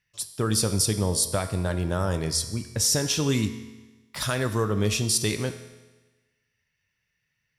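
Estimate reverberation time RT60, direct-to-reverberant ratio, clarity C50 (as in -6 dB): 1.2 s, 8.5 dB, 11.0 dB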